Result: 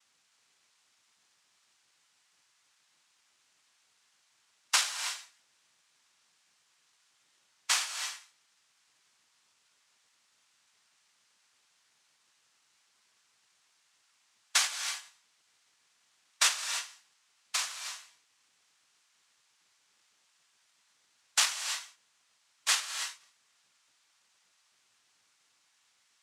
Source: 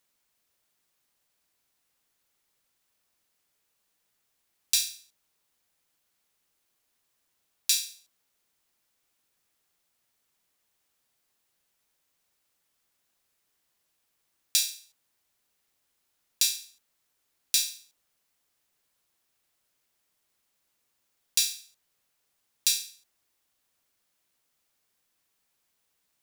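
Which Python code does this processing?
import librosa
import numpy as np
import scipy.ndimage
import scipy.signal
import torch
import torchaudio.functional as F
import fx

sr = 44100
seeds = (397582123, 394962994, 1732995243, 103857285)

y = fx.spec_dropout(x, sr, seeds[0], share_pct=51)
y = fx.cheby2_lowpass(y, sr, hz=6300.0, order=4, stop_db=40, at=(21.62, 22.67), fade=0.02)
y = fx.dmg_noise_colour(y, sr, seeds[1], colour='violet', level_db=-63.0)
y = fx.noise_vocoder(y, sr, seeds[2], bands=2)
y = fx.rev_gated(y, sr, seeds[3], gate_ms=350, shape='rising', drr_db=7.0)
y = y * librosa.db_to_amplitude(3.0)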